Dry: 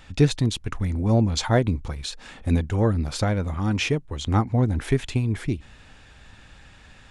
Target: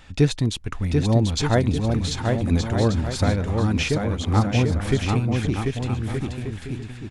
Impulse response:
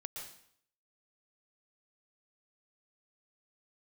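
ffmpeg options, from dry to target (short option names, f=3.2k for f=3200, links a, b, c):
-af "deesser=0.4,aecho=1:1:740|1221|1534|1737|1869:0.631|0.398|0.251|0.158|0.1"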